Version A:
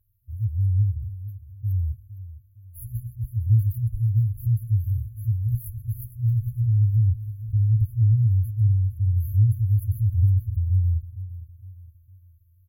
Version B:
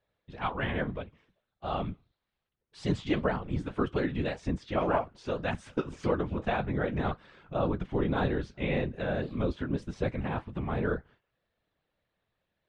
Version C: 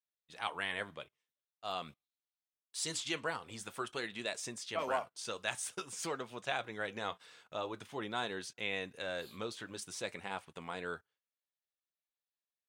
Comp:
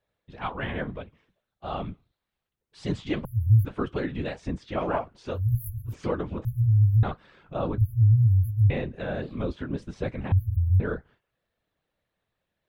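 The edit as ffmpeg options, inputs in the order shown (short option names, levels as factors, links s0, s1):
-filter_complex "[0:a]asplit=5[s0][s1][s2][s3][s4];[1:a]asplit=6[s5][s6][s7][s8][s9][s10];[s5]atrim=end=3.252[s11];[s0]atrim=start=3.248:end=3.652[s12];[s6]atrim=start=3.648:end=5.42[s13];[s1]atrim=start=5.32:end=5.95[s14];[s7]atrim=start=5.85:end=6.452[s15];[s2]atrim=start=6.448:end=7.032[s16];[s8]atrim=start=7.028:end=7.782[s17];[s3]atrim=start=7.778:end=8.702[s18];[s9]atrim=start=8.698:end=10.322[s19];[s4]atrim=start=10.318:end=10.802[s20];[s10]atrim=start=10.798[s21];[s11][s12]acrossfade=d=0.004:c1=hsin:c2=hsin[s22];[s22][s13]acrossfade=d=0.004:c1=hsin:c2=hsin[s23];[s23][s14]acrossfade=d=0.1:c1=tri:c2=tri[s24];[s24][s15]acrossfade=d=0.1:c1=tri:c2=tri[s25];[s25][s16]acrossfade=d=0.004:c1=hsin:c2=hsin[s26];[s26][s17]acrossfade=d=0.004:c1=hsin:c2=hsin[s27];[s27][s18]acrossfade=d=0.004:c1=hsin:c2=hsin[s28];[s28][s19]acrossfade=d=0.004:c1=hsin:c2=hsin[s29];[s29][s20]acrossfade=d=0.004:c1=hsin:c2=hsin[s30];[s30][s21]acrossfade=d=0.004:c1=hsin:c2=hsin"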